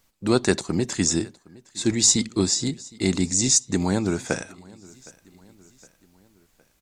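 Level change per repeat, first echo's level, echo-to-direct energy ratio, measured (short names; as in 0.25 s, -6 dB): -6.0 dB, -24.0 dB, -23.0 dB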